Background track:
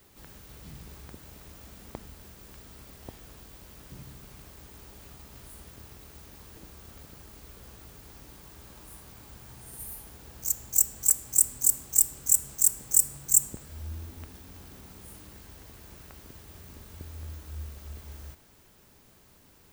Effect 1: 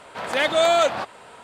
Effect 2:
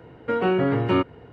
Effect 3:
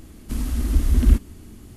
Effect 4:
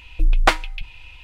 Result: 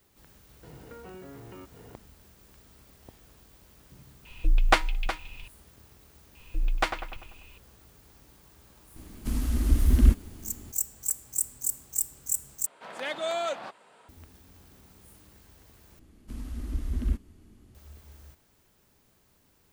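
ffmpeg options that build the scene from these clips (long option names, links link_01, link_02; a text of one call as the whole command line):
ffmpeg -i bed.wav -i cue0.wav -i cue1.wav -i cue2.wav -i cue3.wav -filter_complex "[4:a]asplit=2[link_01][link_02];[3:a]asplit=2[link_03][link_04];[0:a]volume=-7dB[link_05];[2:a]acompressor=threshold=-42dB:ratio=6:attack=3.2:release=140:knee=1:detection=peak[link_06];[link_01]aecho=1:1:366:0.266[link_07];[link_02]asplit=2[link_08][link_09];[link_09]adelay=98,lowpass=frequency=2700:poles=1,volume=-7.5dB,asplit=2[link_10][link_11];[link_11]adelay=98,lowpass=frequency=2700:poles=1,volume=0.52,asplit=2[link_12][link_13];[link_13]adelay=98,lowpass=frequency=2700:poles=1,volume=0.52,asplit=2[link_14][link_15];[link_15]adelay=98,lowpass=frequency=2700:poles=1,volume=0.52,asplit=2[link_16][link_17];[link_17]adelay=98,lowpass=frequency=2700:poles=1,volume=0.52,asplit=2[link_18][link_19];[link_19]adelay=98,lowpass=frequency=2700:poles=1,volume=0.52[link_20];[link_08][link_10][link_12][link_14][link_16][link_18][link_20]amix=inputs=7:normalize=0[link_21];[1:a]highpass=frequency=140:width=0.5412,highpass=frequency=140:width=1.3066[link_22];[link_04]highshelf=frequency=5900:gain=-6.5[link_23];[link_05]asplit=3[link_24][link_25][link_26];[link_24]atrim=end=12.664[link_27];[link_22]atrim=end=1.43,asetpts=PTS-STARTPTS,volume=-12.5dB[link_28];[link_25]atrim=start=14.086:end=15.994[link_29];[link_23]atrim=end=1.76,asetpts=PTS-STARTPTS,volume=-12.5dB[link_30];[link_26]atrim=start=17.746[link_31];[link_06]atrim=end=1.32,asetpts=PTS-STARTPTS,volume=-3dB,afade=type=in:duration=0.004:curve=hsin,afade=type=out:start_time=1.316:duration=0.004:curve=hsin,adelay=630[link_32];[link_07]atrim=end=1.23,asetpts=PTS-STARTPTS,volume=-5dB,afade=type=in:duration=0.004:curve=hsin,afade=type=out:start_time=1.226:duration=0.004:curve=hsin,adelay=187425S[link_33];[link_21]atrim=end=1.23,asetpts=PTS-STARTPTS,volume=-11dB,afade=type=in:duration=0.004:curve=hsin,afade=type=out:start_time=1.226:duration=0.004:curve=hsin,adelay=6350[link_34];[link_03]atrim=end=1.76,asetpts=PTS-STARTPTS,volume=-3dB,afade=type=in:duration=0.004:curve=hsin,afade=type=out:start_time=1.756:duration=0.004:curve=hsin,adelay=8960[link_35];[link_27][link_28]acrossfade=duration=0.004:curve1=hsin:curve2=hsin[link_36];[link_36][link_29]acrossfade=duration=0.004:curve1=hsin:curve2=hsin[link_37];[link_37][link_30]acrossfade=duration=0.004:curve1=hsin:curve2=hsin[link_38];[link_38][link_31]acrossfade=duration=0.004:curve1=hsin:curve2=hsin[link_39];[link_39][link_32][link_33][link_34][link_35]amix=inputs=5:normalize=0" out.wav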